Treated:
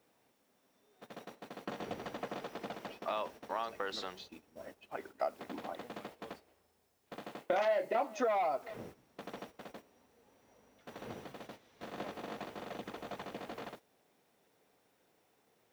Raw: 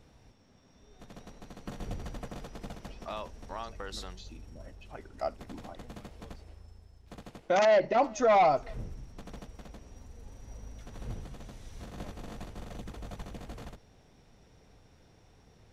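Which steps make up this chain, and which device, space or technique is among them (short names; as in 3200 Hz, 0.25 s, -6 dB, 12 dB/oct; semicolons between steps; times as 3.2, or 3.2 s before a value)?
baby monitor (BPF 310–3700 Hz; compressor 6:1, threshold -35 dBFS, peak gain reduction 15 dB; white noise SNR 26 dB; gate -54 dBFS, range -12 dB); 7.15–8.03 doubler 29 ms -8 dB; gain +4.5 dB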